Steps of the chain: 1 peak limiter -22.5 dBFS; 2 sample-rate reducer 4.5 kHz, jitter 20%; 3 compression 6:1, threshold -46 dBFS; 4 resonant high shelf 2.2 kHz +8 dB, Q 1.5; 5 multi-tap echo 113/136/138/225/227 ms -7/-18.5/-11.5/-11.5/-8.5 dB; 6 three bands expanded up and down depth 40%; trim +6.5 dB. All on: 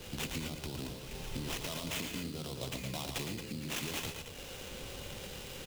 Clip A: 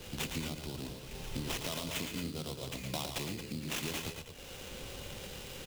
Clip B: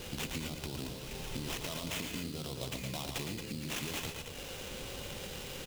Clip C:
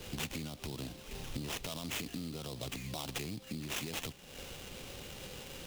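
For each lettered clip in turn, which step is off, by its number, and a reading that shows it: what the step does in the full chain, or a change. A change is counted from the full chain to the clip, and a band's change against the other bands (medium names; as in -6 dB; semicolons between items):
1, mean gain reduction 2.5 dB; 6, crest factor change +2.0 dB; 5, loudness change -1.5 LU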